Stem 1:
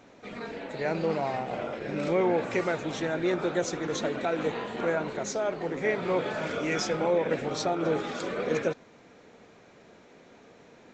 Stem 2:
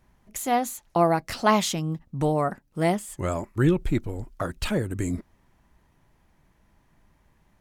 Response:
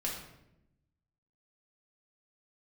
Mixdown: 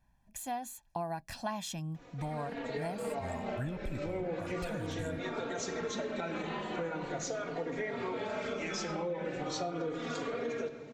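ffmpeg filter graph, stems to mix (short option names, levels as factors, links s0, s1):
-filter_complex "[0:a]alimiter=limit=0.0944:level=0:latency=1:release=34,asplit=2[s0][s1];[s1]adelay=3.6,afreqshift=-0.39[s2];[s0][s2]amix=inputs=2:normalize=1,adelay=1950,volume=0.841,asplit=2[s3][s4];[s4]volume=0.531[s5];[1:a]aecho=1:1:1.2:0.76,volume=0.237,asplit=2[s6][s7];[s7]apad=whole_len=568384[s8];[s3][s8]sidechaincompress=threshold=0.00398:ratio=8:attack=16:release=107[s9];[2:a]atrim=start_sample=2205[s10];[s5][s10]afir=irnorm=-1:irlink=0[s11];[s9][s6][s11]amix=inputs=3:normalize=0,acompressor=threshold=0.0224:ratio=6"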